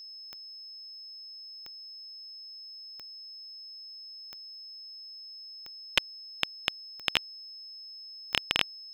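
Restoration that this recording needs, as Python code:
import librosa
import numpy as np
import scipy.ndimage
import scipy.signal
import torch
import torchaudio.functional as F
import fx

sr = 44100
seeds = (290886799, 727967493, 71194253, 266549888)

y = fx.fix_declick_ar(x, sr, threshold=10.0)
y = fx.notch(y, sr, hz=5200.0, q=30.0)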